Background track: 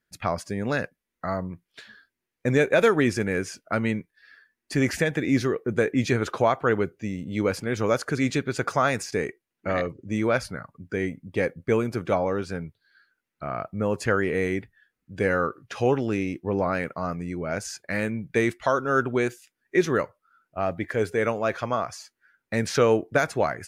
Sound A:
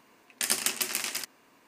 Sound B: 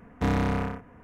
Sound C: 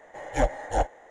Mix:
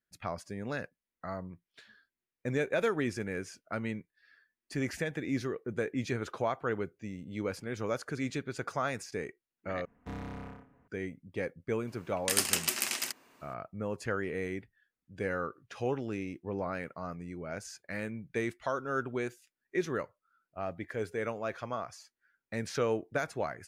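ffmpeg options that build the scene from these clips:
-filter_complex "[0:a]volume=0.299[s0];[2:a]asplit=2[s1][s2];[s2]adelay=145,lowpass=f=2000:p=1,volume=0.106,asplit=2[s3][s4];[s4]adelay=145,lowpass=f=2000:p=1,volume=0.52,asplit=2[s5][s6];[s6]adelay=145,lowpass=f=2000:p=1,volume=0.52,asplit=2[s7][s8];[s8]adelay=145,lowpass=f=2000:p=1,volume=0.52[s9];[s1][s3][s5][s7][s9]amix=inputs=5:normalize=0[s10];[s0]asplit=2[s11][s12];[s11]atrim=end=9.854[s13];[s10]atrim=end=1.03,asetpts=PTS-STARTPTS,volume=0.158[s14];[s12]atrim=start=10.876[s15];[1:a]atrim=end=1.67,asetpts=PTS-STARTPTS,volume=0.891,afade=t=in:d=0.004:c=hsin,afade=t=out:st=1.666:d=0.004:c=hsin,adelay=11870[s16];[s13][s14]acrossfade=d=0.004:c1=hsin:c2=hsin[s17];[s17][s15]acrossfade=d=0.004:c1=hsin:c2=hsin[s18];[s18][s16]amix=inputs=2:normalize=0"

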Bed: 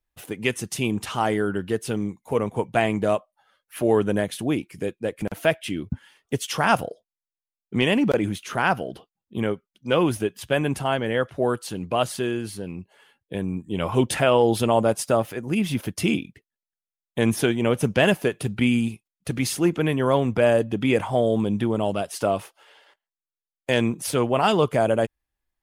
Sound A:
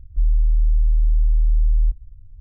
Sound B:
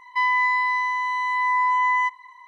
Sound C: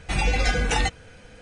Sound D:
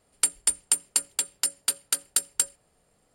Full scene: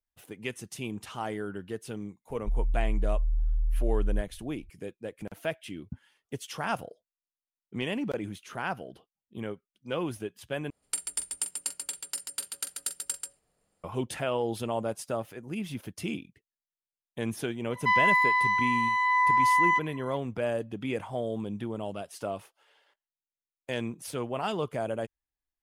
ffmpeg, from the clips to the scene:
-filter_complex "[0:a]volume=0.266[s0];[4:a]aecho=1:1:44|137:0.282|0.531[s1];[s0]asplit=2[s2][s3];[s2]atrim=end=10.704[s4];[s1]atrim=end=3.14,asetpts=PTS-STARTPTS,volume=0.335[s5];[s3]atrim=start=13.836[s6];[1:a]atrim=end=2.4,asetpts=PTS-STARTPTS,volume=0.299,afade=t=in:d=0.004:c=hsin,afade=t=out:st=2.396:d=0.004:c=hsin,adelay=2300[s7];[2:a]atrim=end=2.47,asetpts=PTS-STARTPTS,volume=0.794,afade=t=in:d=0.004:c=hsin,afade=t=out:st=2.466:d=0.004:c=hsin,adelay=17700[s8];[s4][s5]acrossfade=d=0.004:c1=hsin:c2=hsin[s9];[s9][s6]acrossfade=d=0.004:c1=hsin:c2=hsin[s10];[s10][s7][s8]amix=inputs=3:normalize=0"

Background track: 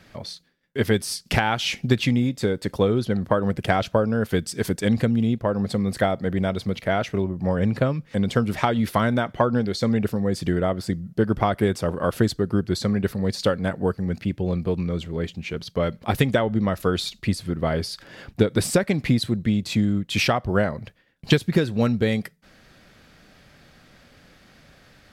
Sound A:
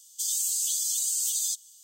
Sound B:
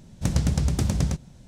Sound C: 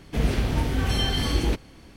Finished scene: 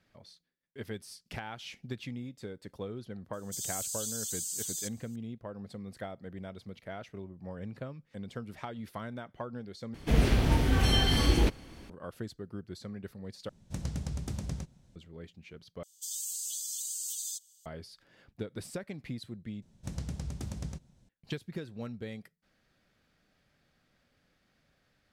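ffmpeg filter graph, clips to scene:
-filter_complex "[1:a]asplit=2[s0][s1];[2:a]asplit=2[s2][s3];[0:a]volume=0.106,asplit=5[s4][s5][s6][s7][s8];[s4]atrim=end=9.944[s9];[3:a]atrim=end=1.96,asetpts=PTS-STARTPTS,volume=0.891[s10];[s5]atrim=start=11.896:end=13.494[s11];[s2]atrim=end=1.47,asetpts=PTS-STARTPTS,volume=0.224[s12];[s6]atrim=start=14.956:end=15.834[s13];[s1]atrim=end=1.83,asetpts=PTS-STARTPTS,volume=0.335[s14];[s7]atrim=start=17.656:end=19.624[s15];[s3]atrim=end=1.47,asetpts=PTS-STARTPTS,volume=0.178[s16];[s8]atrim=start=21.086[s17];[s0]atrim=end=1.83,asetpts=PTS-STARTPTS,volume=0.355,afade=t=in:d=0.004:c=hsin,afade=t=out:st=1.826:d=0.004:c=hsin,adelay=146853S[s18];[s9][s10]acrossfade=d=0.004:c1=hsin:c2=hsin[s19];[s19][s11]acrossfade=d=0.004:c1=hsin:c2=hsin[s20];[s20][s12]acrossfade=d=0.004:c1=hsin:c2=hsin[s21];[s21][s13]acrossfade=d=0.004:c1=hsin:c2=hsin[s22];[s22][s14]acrossfade=d=0.004:c1=hsin:c2=hsin[s23];[s23][s15]acrossfade=d=0.004:c1=hsin:c2=hsin[s24];[s24][s16]acrossfade=d=0.004:c1=hsin:c2=hsin[s25];[s25][s17]acrossfade=d=0.004:c1=hsin:c2=hsin[s26];[s26][s18]amix=inputs=2:normalize=0"

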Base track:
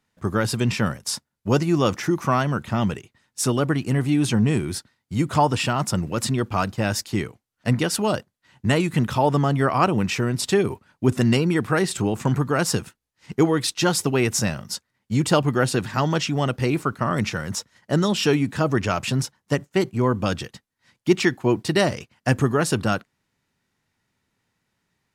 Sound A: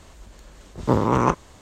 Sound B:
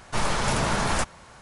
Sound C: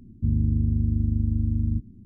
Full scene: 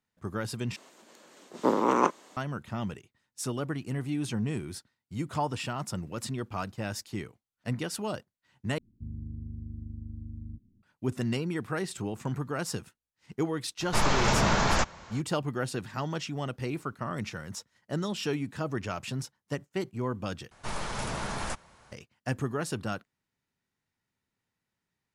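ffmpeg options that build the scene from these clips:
-filter_complex "[2:a]asplit=2[s0][s1];[0:a]volume=0.266[s2];[1:a]highpass=f=230:w=0.5412,highpass=f=230:w=1.3066[s3];[s0]aresample=16000,aresample=44100[s4];[s2]asplit=4[s5][s6][s7][s8];[s5]atrim=end=0.764[s9];[s3]atrim=end=1.61,asetpts=PTS-STARTPTS,volume=0.668[s10];[s6]atrim=start=2.366:end=8.784[s11];[3:a]atrim=end=2.05,asetpts=PTS-STARTPTS,volume=0.141[s12];[s7]atrim=start=10.826:end=20.514[s13];[s1]atrim=end=1.41,asetpts=PTS-STARTPTS,volume=0.335[s14];[s8]atrim=start=21.916[s15];[s4]atrim=end=1.41,asetpts=PTS-STARTPTS,afade=t=in:d=0.004:c=hsin,afade=t=out:st=1.406:d=0.004:c=hsin,adelay=608580S[s16];[s9][s10]acrossfade=d=0.004:c1=hsin:c2=hsin[s17];[s17][s11]acrossfade=d=0.004:c1=hsin:c2=hsin[s18];[s18][s12]acrossfade=d=0.004:c1=hsin:c2=hsin[s19];[s19][s13]acrossfade=d=0.004:c1=hsin:c2=hsin[s20];[s20][s14]acrossfade=d=0.004:c1=hsin:c2=hsin[s21];[s21][s15]acrossfade=d=0.004:c1=hsin:c2=hsin[s22];[s22][s16]amix=inputs=2:normalize=0"

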